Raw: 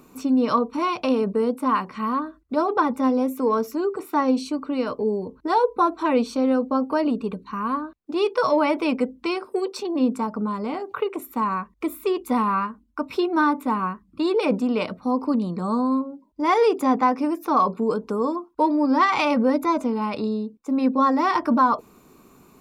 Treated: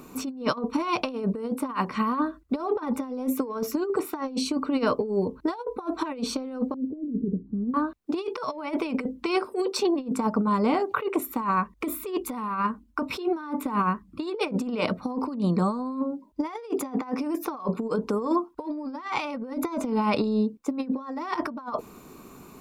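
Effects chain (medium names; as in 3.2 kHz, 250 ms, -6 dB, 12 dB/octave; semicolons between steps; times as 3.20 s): compressor with a negative ratio -26 dBFS, ratio -0.5; 6.74–7.74 s: inverse Chebyshev low-pass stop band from 980 Hz, stop band 50 dB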